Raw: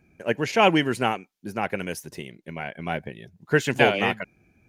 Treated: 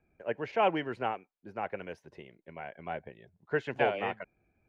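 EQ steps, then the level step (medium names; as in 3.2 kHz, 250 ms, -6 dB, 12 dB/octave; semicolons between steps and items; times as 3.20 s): three-band isolator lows -20 dB, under 480 Hz, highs -16 dB, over 4.9 kHz; tilt EQ -4.5 dB/octave; -7.5 dB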